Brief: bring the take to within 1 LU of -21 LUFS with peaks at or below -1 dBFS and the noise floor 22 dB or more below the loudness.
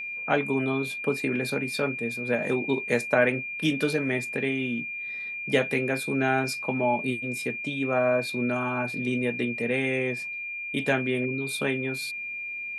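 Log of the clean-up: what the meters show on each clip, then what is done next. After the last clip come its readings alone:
steady tone 2400 Hz; tone level -32 dBFS; loudness -27.0 LUFS; peak -9.0 dBFS; loudness target -21.0 LUFS
-> notch 2400 Hz, Q 30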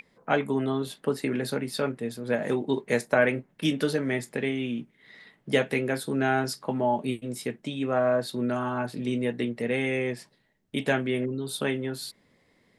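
steady tone none; loudness -28.5 LUFS; peak -9.0 dBFS; loudness target -21.0 LUFS
-> gain +7.5 dB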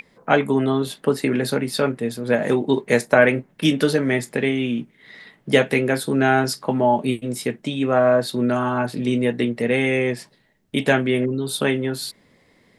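loudness -21.0 LUFS; peak -1.5 dBFS; noise floor -59 dBFS

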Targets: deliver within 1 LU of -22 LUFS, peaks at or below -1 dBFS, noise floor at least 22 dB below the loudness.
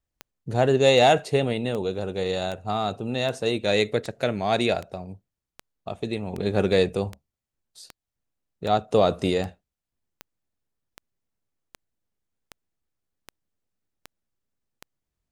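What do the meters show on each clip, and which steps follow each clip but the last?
clicks 20; loudness -24.0 LUFS; peak -6.5 dBFS; loudness target -22.0 LUFS
-> de-click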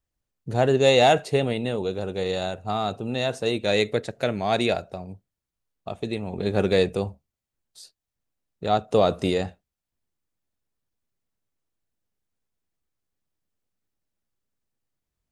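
clicks 0; loudness -24.0 LUFS; peak -6.5 dBFS; loudness target -22.0 LUFS
-> gain +2 dB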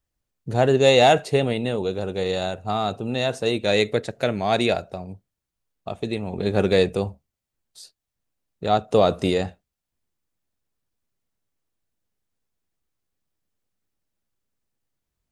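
loudness -22.0 LUFS; peak -4.5 dBFS; noise floor -84 dBFS

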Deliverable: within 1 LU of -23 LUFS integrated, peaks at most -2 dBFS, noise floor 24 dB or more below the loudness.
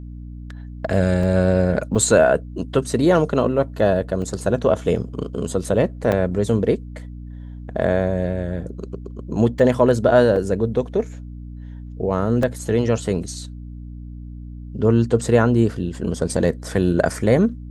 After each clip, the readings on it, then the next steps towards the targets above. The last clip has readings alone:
dropouts 7; longest dropout 2.7 ms; hum 60 Hz; harmonics up to 300 Hz; hum level -32 dBFS; loudness -20.0 LUFS; peak -2.5 dBFS; loudness target -23.0 LUFS
-> interpolate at 1.23/1.95/4.22/6.12/9.59/10.36/12.43, 2.7 ms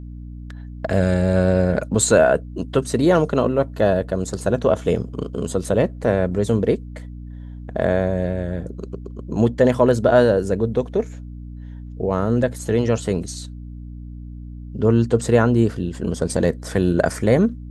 dropouts 0; hum 60 Hz; harmonics up to 300 Hz; hum level -32 dBFS
-> notches 60/120/180/240/300 Hz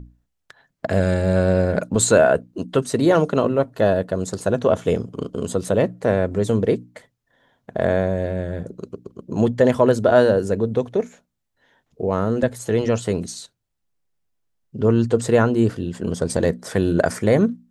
hum none; loudness -20.0 LUFS; peak -2.5 dBFS; loudness target -23.0 LUFS
-> gain -3 dB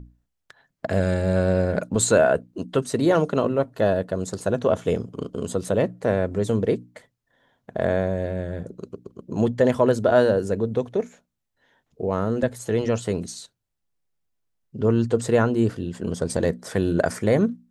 loudness -23.0 LUFS; peak -5.5 dBFS; noise floor -79 dBFS

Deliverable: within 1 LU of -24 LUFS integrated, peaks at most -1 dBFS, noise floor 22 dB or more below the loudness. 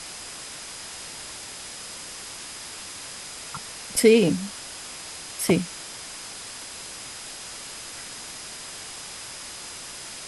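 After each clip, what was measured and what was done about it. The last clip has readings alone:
steady tone 5000 Hz; tone level -46 dBFS; noise floor -39 dBFS; noise floor target -51 dBFS; loudness -29.0 LUFS; peak -5.5 dBFS; loudness target -24.0 LUFS
-> notch 5000 Hz, Q 30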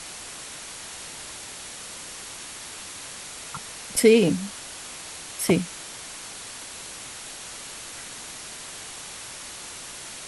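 steady tone none; noise floor -40 dBFS; noise floor target -52 dBFS
-> noise print and reduce 12 dB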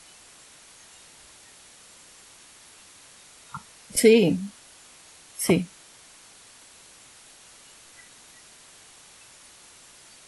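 noise floor -51 dBFS; loudness -22.0 LUFS; peak -5.5 dBFS; loudness target -24.0 LUFS
-> gain -2 dB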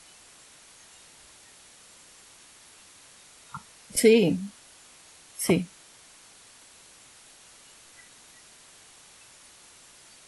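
loudness -24.0 LUFS; peak -7.5 dBFS; noise floor -53 dBFS

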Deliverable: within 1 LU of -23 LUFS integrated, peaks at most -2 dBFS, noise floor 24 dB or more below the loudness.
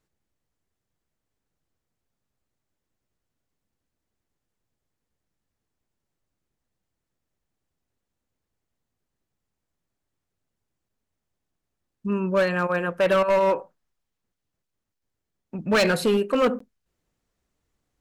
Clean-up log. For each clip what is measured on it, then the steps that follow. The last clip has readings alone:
clipped 0.9%; flat tops at -15.5 dBFS; dropouts 1; longest dropout 14 ms; loudness -22.5 LUFS; peak -15.5 dBFS; loudness target -23.0 LUFS
-> clip repair -15.5 dBFS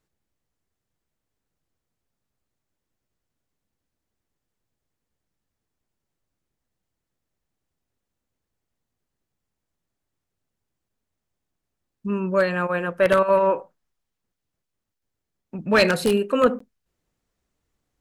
clipped 0.0%; dropouts 1; longest dropout 14 ms
-> interpolate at 16.59, 14 ms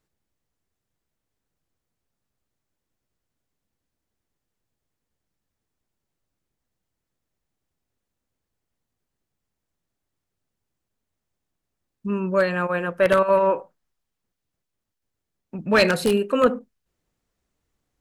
dropouts 0; loudness -21.0 LUFS; peak -6.5 dBFS; loudness target -23.0 LUFS
-> gain -2 dB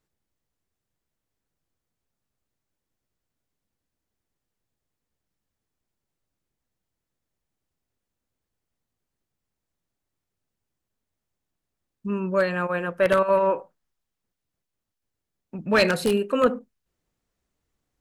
loudness -23.0 LUFS; peak -8.5 dBFS; noise floor -84 dBFS

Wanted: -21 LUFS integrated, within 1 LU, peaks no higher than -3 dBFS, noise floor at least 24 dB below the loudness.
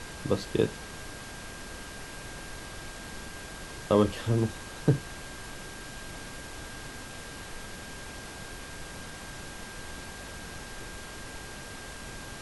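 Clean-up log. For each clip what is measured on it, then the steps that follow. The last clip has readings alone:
steady tone 1600 Hz; tone level -48 dBFS; noise floor -43 dBFS; noise floor target -59 dBFS; loudness -35.0 LUFS; peak -8.5 dBFS; loudness target -21.0 LUFS
-> notch 1600 Hz, Q 30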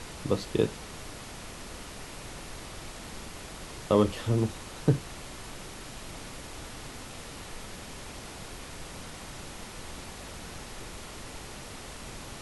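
steady tone none; noise floor -44 dBFS; noise floor target -60 dBFS
-> noise print and reduce 16 dB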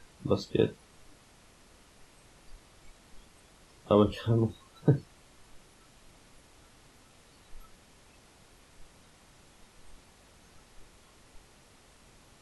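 noise floor -60 dBFS; loudness -29.0 LUFS; peak -9.0 dBFS; loudness target -21.0 LUFS
-> gain +8 dB; limiter -3 dBFS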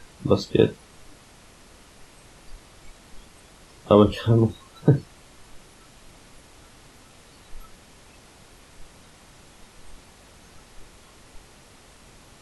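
loudness -21.0 LUFS; peak -3.0 dBFS; noise floor -52 dBFS

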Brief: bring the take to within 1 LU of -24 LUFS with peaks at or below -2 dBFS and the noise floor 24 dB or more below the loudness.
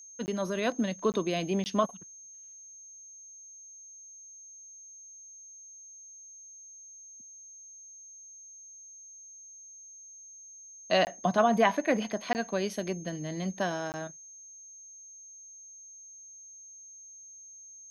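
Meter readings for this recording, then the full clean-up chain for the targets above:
dropouts 6; longest dropout 19 ms; steady tone 6400 Hz; tone level -47 dBFS; loudness -30.0 LUFS; peak -10.0 dBFS; loudness target -24.0 LUFS
-> interpolate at 0.26/1.12/1.64/11.05/12.33/13.92, 19 ms; notch 6400 Hz, Q 30; gain +6 dB

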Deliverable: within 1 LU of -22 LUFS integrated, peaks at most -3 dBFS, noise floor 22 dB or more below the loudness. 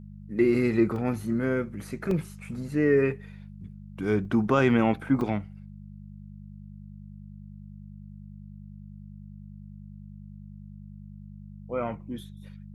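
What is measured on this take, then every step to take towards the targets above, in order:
dropouts 4; longest dropout 2.5 ms; hum 50 Hz; harmonics up to 200 Hz; hum level -42 dBFS; loudness -26.5 LUFS; peak -9.5 dBFS; loudness target -22.0 LUFS
-> interpolate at 0.96/2.11/4.25/5.21, 2.5 ms; de-hum 50 Hz, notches 4; gain +4.5 dB

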